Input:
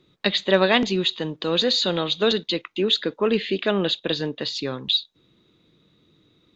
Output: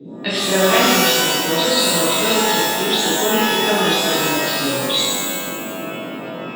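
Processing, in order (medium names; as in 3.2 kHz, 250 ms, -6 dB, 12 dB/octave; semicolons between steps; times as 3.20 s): band noise 150–400 Hz -35 dBFS; vibrato 14 Hz 18 cents; pitch-shifted reverb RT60 1.4 s, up +12 st, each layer -2 dB, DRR -8.5 dB; trim -6 dB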